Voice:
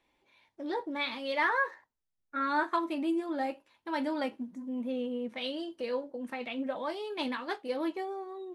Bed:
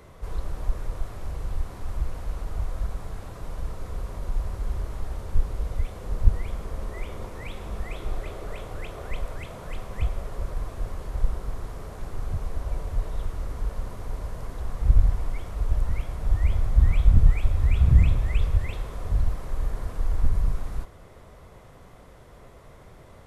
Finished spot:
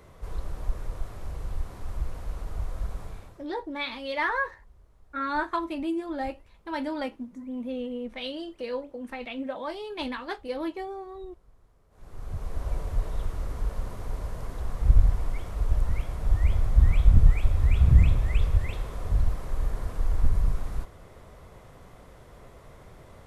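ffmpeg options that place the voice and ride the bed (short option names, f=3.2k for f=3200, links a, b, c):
-filter_complex "[0:a]adelay=2800,volume=1dB[a];[1:a]volume=23dB,afade=t=out:st=3.03:d=0.44:silence=0.0668344,afade=t=in:st=11.9:d=0.77:silence=0.0501187[b];[a][b]amix=inputs=2:normalize=0"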